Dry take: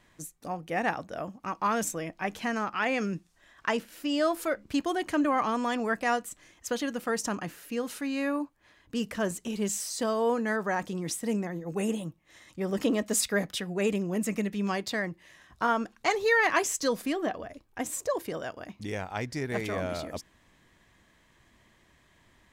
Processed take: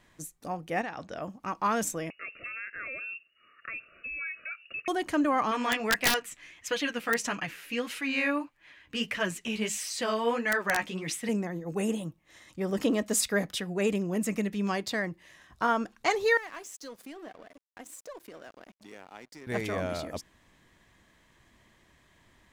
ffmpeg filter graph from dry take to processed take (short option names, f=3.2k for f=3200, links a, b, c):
-filter_complex "[0:a]asettb=1/sr,asplit=3[a][b][c];[a]atrim=end=0.814[d];[b]atrim=start=0.81:end=1.22,asetpts=PTS-STARTPTS,afade=t=in:d=0.004:c=qsin,afade=t=out:st=0.406:d=0.004:c=qsin,highshelf=f=2.8k:g=9,acompressor=threshold=-33dB:ratio=6:attack=3.2:release=140:knee=1:detection=peak,lowpass=4.9k[e];[c]atrim=start=1.216[f];[d][e]acrossfade=d=0.004:c1=hsin:c2=qsin[g];[g][f]acrossfade=d=0.004:c1=qsin:c2=hsin,asettb=1/sr,asplit=3[h][i][j];[h]atrim=end=2.104[k];[i]atrim=start=2.1:end=4.88,asetpts=PTS-STARTPTS,afade=t=in:d=0.004:c=qsin,afade=t=out:st=2.776:d=0.004:c=qsin,acompressor=threshold=-42dB:ratio=2:attack=3.2:release=140:knee=1:detection=peak,lowpass=f=2.5k:t=q:w=0.5098,lowpass=f=2.5k:t=q:w=0.6013,lowpass=f=2.5k:t=q:w=0.9,lowpass=f=2.5k:t=q:w=2.563,afreqshift=-2900,asuperstop=centerf=890:order=12:qfactor=2[l];[j]atrim=start=4.876[m];[k][l]acrossfade=d=0.004:c1=hsin:c2=qsin[n];[n][m]acrossfade=d=0.004:c1=qsin:c2=hsin,asettb=1/sr,asplit=3[o][p][q];[o]atrim=end=5.514[r];[p]atrim=start=5.51:end=11.29,asetpts=PTS-STARTPTS,afade=t=in:d=0.004:c=qsin,afade=t=out:st=5.776:d=0.004:c=qsin,equalizer=f=2.4k:w=1:g=14,flanger=delay=6:depth=8.3:regen=6:speed=1.6:shape=sinusoidal,aeval=exprs='(mod(6.31*val(0)+1,2)-1)/6.31':c=same[s];[q]atrim=start=11.286[t];[r][s]acrossfade=d=0.004:c1=hsin:c2=qsin[u];[u][t]acrossfade=d=0.004:c1=qsin:c2=hsin,asettb=1/sr,asplit=3[v][w][x];[v]atrim=end=16.374[y];[w]atrim=start=16.37:end=19.47,asetpts=PTS-STARTPTS,afade=t=in:d=0.004:c=qsin,afade=t=out:st=3.096:d=0.004:c=qsin,acompressor=threshold=-45dB:ratio=2.5:attack=3.2:release=140:knee=1:detection=peak,highpass=f=200:w=0.5412,highpass=f=200:w=1.3066,aeval=exprs='sgn(val(0))*max(abs(val(0))-0.00224,0)':c=same[z];[x]atrim=start=19.466[aa];[y][z]acrossfade=d=0.004:c1=hsin:c2=qsin[ab];[ab][aa]acrossfade=d=0.004:c1=qsin:c2=hsin"